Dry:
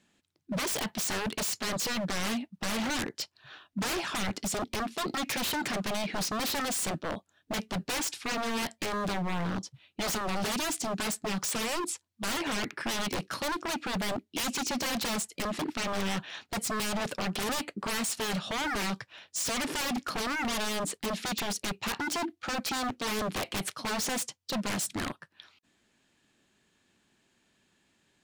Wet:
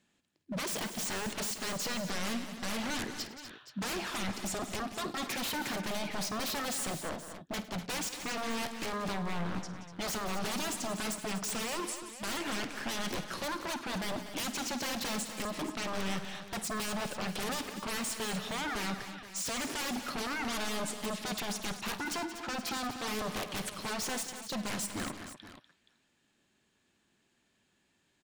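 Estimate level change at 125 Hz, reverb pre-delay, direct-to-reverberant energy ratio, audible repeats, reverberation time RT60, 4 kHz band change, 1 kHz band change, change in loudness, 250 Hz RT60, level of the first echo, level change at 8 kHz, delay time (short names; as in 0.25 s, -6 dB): -3.5 dB, none, none, 5, none, -3.5 dB, -3.5 dB, -3.5 dB, none, -15.0 dB, -3.5 dB, 52 ms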